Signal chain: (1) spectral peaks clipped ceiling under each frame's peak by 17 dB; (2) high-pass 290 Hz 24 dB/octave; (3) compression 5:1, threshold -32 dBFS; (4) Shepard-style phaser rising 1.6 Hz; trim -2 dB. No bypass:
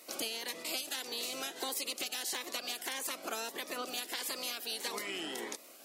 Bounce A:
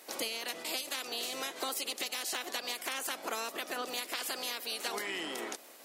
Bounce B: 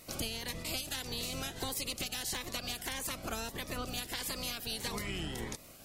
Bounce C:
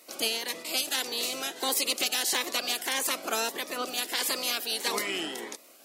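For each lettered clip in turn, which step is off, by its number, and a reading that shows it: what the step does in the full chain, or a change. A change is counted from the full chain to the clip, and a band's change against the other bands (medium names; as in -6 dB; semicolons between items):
4, 1 kHz band +2.5 dB; 2, 250 Hz band +5.0 dB; 3, mean gain reduction 7.0 dB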